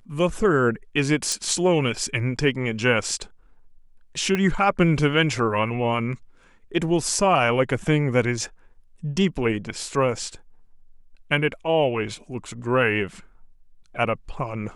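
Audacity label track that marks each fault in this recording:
1.320000	1.320000	click −11 dBFS
4.350000	4.350000	click −11 dBFS

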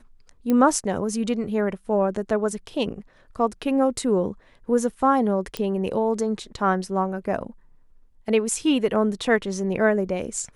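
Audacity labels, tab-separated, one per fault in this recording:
0.500000	0.500000	click −12 dBFS
5.570000	5.570000	click −13 dBFS

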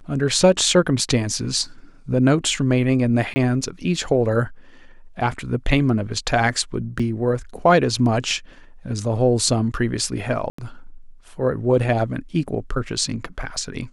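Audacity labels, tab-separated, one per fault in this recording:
3.340000	3.360000	drop-out 20 ms
6.990000	7.000000	drop-out 5.6 ms
10.500000	10.580000	drop-out 84 ms

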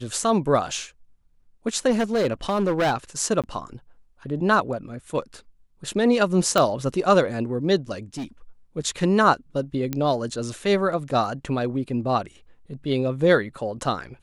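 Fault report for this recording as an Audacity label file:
1.900000	2.930000	clipping −17.5 dBFS
3.420000	3.440000	drop-out 17 ms
6.580000	6.580000	click −6 dBFS
8.140000	8.250000	clipping −27 dBFS
9.930000	9.930000	click −12 dBFS

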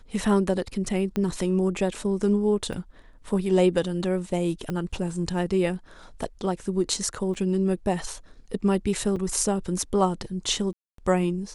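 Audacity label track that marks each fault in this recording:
1.160000	1.160000	click −15 dBFS
2.730000	2.730000	drop-out 3.4 ms
4.700000	4.700000	click −18 dBFS
7.340000	7.350000	drop-out 5.4 ms
9.160000	9.170000	drop-out 5.2 ms
10.730000	10.980000	drop-out 253 ms

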